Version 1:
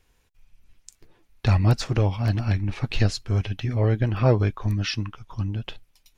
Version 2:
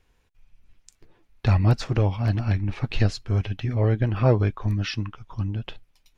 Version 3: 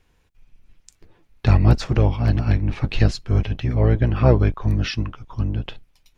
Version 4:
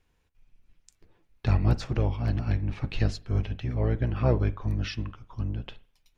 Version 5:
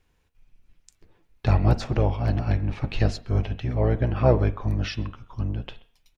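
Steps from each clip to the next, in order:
treble shelf 5.3 kHz -9 dB
octave divider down 1 oct, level -3 dB; trim +3 dB
reverberation, pre-delay 40 ms, DRR 17 dB; trim -8.5 dB
de-hum 232.5 Hz, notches 17; dynamic bell 680 Hz, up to +6 dB, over -47 dBFS, Q 1.2; speakerphone echo 130 ms, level -22 dB; trim +3 dB

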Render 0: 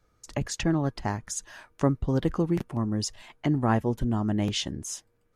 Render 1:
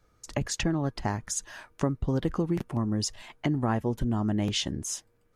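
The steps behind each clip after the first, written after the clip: compression 3:1, threshold -26 dBFS, peak gain reduction 7.5 dB; trim +2 dB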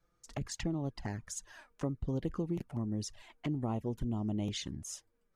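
touch-sensitive flanger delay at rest 6 ms, full sweep at -23 dBFS; trim -7 dB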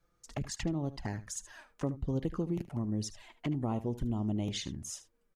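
delay 75 ms -15.5 dB; trim +1.5 dB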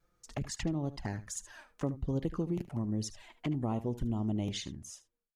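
fade out at the end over 0.89 s; vibrato 2.4 Hz 31 cents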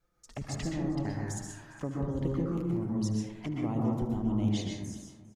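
feedback delay 404 ms, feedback 45%, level -21 dB; plate-style reverb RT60 1.1 s, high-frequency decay 0.25×, pre-delay 110 ms, DRR -2 dB; trim -2.5 dB

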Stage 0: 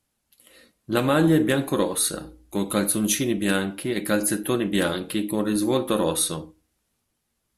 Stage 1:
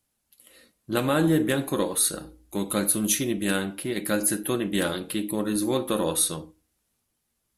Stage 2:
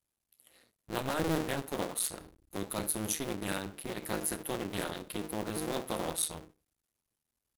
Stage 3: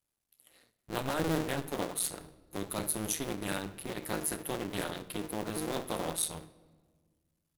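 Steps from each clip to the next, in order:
treble shelf 7.1 kHz +5.5 dB; trim -3 dB
cycle switcher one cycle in 2, muted; trim -7 dB
reverberation RT60 1.6 s, pre-delay 7 ms, DRR 14.5 dB

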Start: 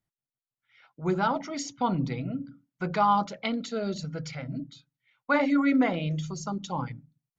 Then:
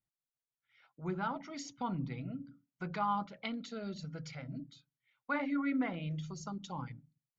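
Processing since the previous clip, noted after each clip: low-pass that closes with the level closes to 2.9 kHz, closed at -24 dBFS; dynamic bell 530 Hz, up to -6 dB, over -39 dBFS, Q 0.95; trim -8 dB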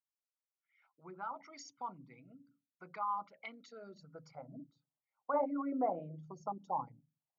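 resonances exaggerated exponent 1.5; band-pass sweep 2.2 kHz -> 740 Hz, 3.61–4.61 s; high-order bell 2.4 kHz -16 dB; trim +10.5 dB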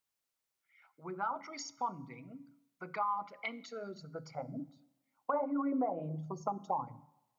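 compression 12:1, threshold -38 dBFS, peak gain reduction 11 dB; plate-style reverb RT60 0.96 s, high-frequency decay 0.85×, DRR 17.5 dB; trim +8 dB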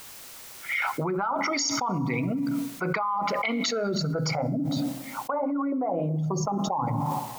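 level flattener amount 100%; trim +3 dB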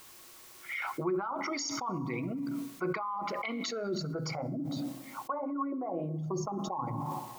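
small resonant body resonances 350/1100 Hz, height 12 dB, ringing for 95 ms; trim -9 dB

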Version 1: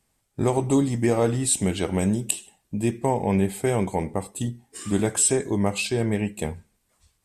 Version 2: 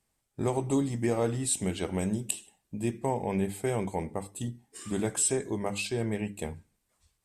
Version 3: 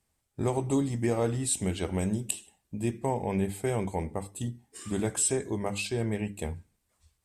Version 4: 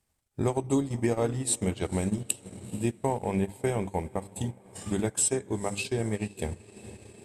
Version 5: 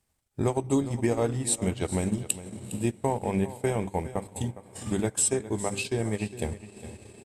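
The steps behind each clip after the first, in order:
hum notches 50/100/150/200/250/300 Hz; trim -6.5 dB
peaking EQ 75 Hz +7 dB 0.77 oct
echo that smears into a reverb 468 ms, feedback 62%, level -15 dB; transient shaper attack +3 dB, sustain -11 dB
delay 409 ms -15 dB; trim +1 dB

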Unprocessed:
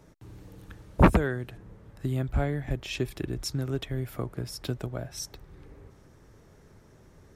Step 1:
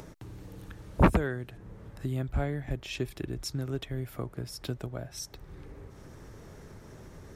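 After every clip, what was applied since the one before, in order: upward compressor, threshold -34 dBFS; trim -3 dB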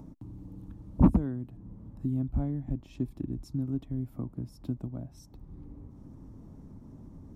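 FFT filter 140 Hz 0 dB, 270 Hz +7 dB, 410 Hz -11 dB, 1 kHz -7 dB, 1.6 kHz -22 dB, 13 kHz -16 dB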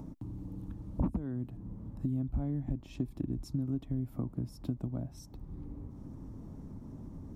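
compression 5:1, threshold -32 dBFS, peak gain reduction 15.5 dB; trim +2.5 dB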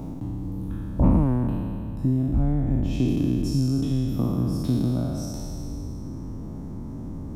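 spectral sustain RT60 2.50 s; trim +8 dB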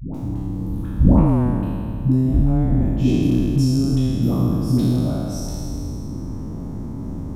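phase dispersion highs, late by 146 ms, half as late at 420 Hz; trim +5.5 dB

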